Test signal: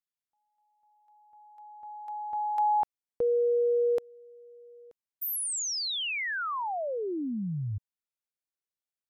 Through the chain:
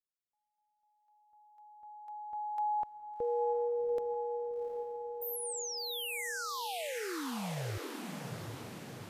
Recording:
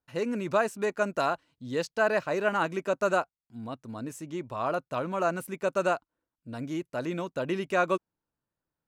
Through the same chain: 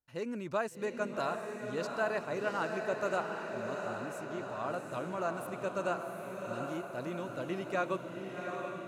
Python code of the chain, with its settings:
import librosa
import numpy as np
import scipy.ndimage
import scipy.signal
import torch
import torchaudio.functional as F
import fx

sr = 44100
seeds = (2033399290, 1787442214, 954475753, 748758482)

y = fx.low_shelf(x, sr, hz=61.0, db=7.0)
y = fx.echo_diffused(y, sr, ms=753, feedback_pct=61, wet_db=-4.5)
y = y * librosa.db_to_amplitude(-8.0)